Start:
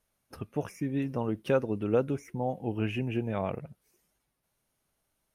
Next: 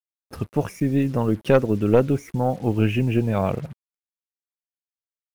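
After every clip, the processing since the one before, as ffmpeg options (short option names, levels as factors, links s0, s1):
-af "lowshelf=f=210:g=5.5,aeval=exprs='0.237*(cos(1*acos(clip(val(0)/0.237,-1,1)))-cos(1*PI/2))+0.0473*(cos(2*acos(clip(val(0)/0.237,-1,1)))-cos(2*PI/2))+0.0188*(cos(3*acos(clip(val(0)/0.237,-1,1)))-cos(3*PI/2))+0.0075*(cos(5*acos(clip(val(0)/0.237,-1,1)))-cos(5*PI/2))':c=same,acrusher=bits=8:mix=0:aa=0.5,volume=2.66"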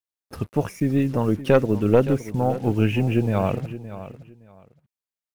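-af "aecho=1:1:567|1134:0.2|0.0419"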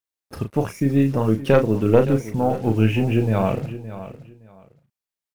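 -filter_complex "[0:a]asplit=2[s0][s1];[s1]adelay=36,volume=0.422[s2];[s0][s2]amix=inputs=2:normalize=0,volume=1.12"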